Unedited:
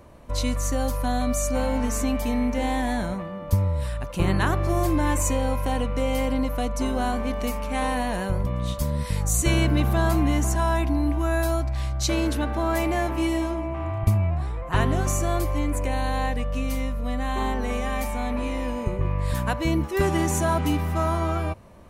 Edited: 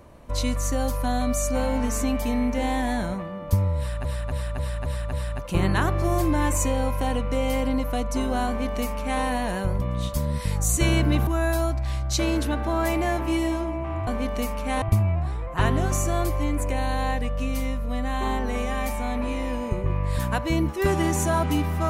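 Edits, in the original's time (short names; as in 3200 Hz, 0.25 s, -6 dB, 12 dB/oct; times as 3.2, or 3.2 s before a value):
3.78–4.05 loop, 6 plays
7.12–7.87 copy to 13.97
9.92–11.17 cut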